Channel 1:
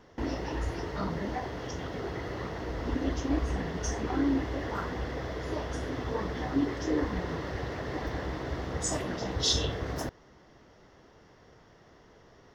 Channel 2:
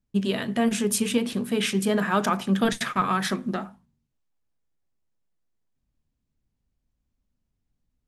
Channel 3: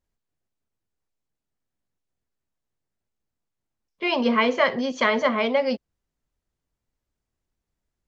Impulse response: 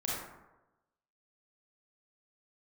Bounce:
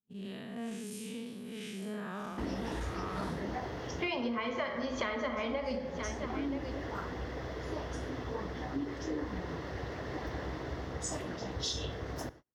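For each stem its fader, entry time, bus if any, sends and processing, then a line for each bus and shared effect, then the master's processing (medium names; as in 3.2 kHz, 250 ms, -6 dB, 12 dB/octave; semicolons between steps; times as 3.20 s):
-6.0 dB, 2.20 s, send -21 dB, no echo send, high-pass 46 Hz; gain riding within 4 dB 2 s
-14.0 dB, 0.00 s, no send, no echo send, spectral blur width 181 ms
-4.0 dB, 0.00 s, send -6 dB, echo send -15.5 dB, none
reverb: on, RT60 1.0 s, pre-delay 28 ms
echo: delay 978 ms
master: gate -50 dBFS, range -35 dB; compression 16:1, threshold -31 dBFS, peak gain reduction 17 dB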